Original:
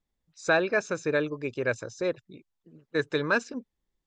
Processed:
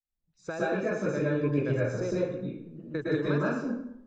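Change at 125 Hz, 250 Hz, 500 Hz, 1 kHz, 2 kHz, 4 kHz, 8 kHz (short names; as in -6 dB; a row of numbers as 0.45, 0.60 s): +8.5, +4.0, -1.0, -4.0, -7.5, -9.0, -7.0 dB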